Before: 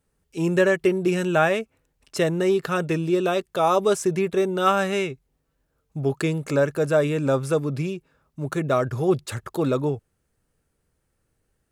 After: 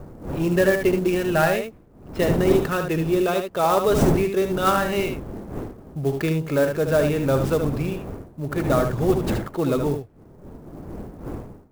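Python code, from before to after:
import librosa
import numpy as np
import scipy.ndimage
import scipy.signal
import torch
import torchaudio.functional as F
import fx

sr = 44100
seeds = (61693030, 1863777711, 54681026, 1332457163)

y = fx.cvsd(x, sr, bps=64000)
y = fx.dmg_wind(y, sr, seeds[0], corner_hz=330.0, level_db=-31.0)
y = y + 10.0 ** (-6.5 / 20.0) * np.pad(y, (int(75 * sr / 1000.0), 0))[:len(y)]
y = fx.env_lowpass(y, sr, base_hz=1500.0, full_db=-16.0)
y = fx.clock_jitter(y, sr, seeds[1], jitter_ms=0.022)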